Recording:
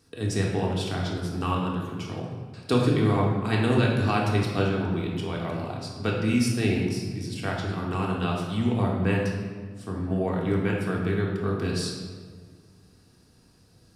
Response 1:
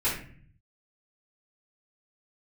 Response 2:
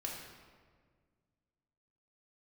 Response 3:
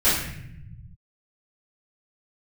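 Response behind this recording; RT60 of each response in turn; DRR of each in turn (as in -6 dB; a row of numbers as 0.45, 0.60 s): 2; 0.45, 1.7, 0.75 s; -10.5, -2.5, -15.0 dB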